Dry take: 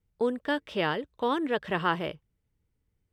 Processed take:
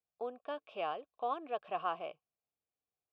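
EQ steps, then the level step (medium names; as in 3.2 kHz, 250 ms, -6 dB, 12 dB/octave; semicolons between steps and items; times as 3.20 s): vowel filter a; +1.5 dB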